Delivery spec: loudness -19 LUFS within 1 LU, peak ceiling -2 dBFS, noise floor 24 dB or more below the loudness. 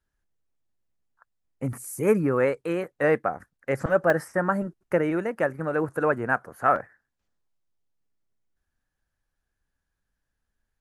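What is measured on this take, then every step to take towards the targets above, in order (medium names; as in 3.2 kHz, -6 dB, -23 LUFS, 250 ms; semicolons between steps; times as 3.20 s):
dropouts 3; longest dropout 1.7 ms; loudness -25.5 LUFS; peak level -7.5 dBFS; loudness target -19.0 LUFS
-> interpolate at 1.73/4.10/6.76 s, 1.7 ms; trim +6.5 dB; peak limiter -2 dBFS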